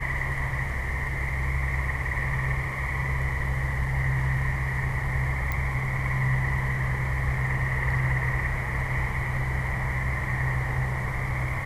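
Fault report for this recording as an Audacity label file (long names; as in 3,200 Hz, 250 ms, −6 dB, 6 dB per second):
5.520000	5.520000	click −15 dBFS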